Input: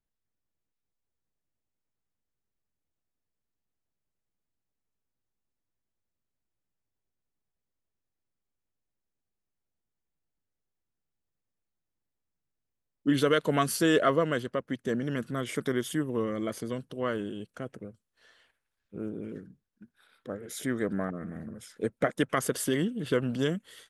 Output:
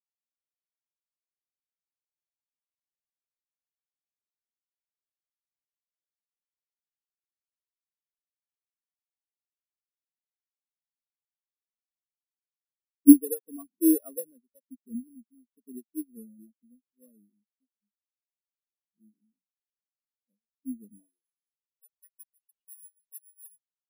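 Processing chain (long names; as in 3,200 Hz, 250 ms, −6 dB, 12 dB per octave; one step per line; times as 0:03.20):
bad sample-rate conversion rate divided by 4×, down none, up zero stuff
high-pass filter sweep 210 Hz → 2,800 Hz, 0:20.88–0:22.30
every bin expanded away from the loudest bin 4 to 1
level −2 dB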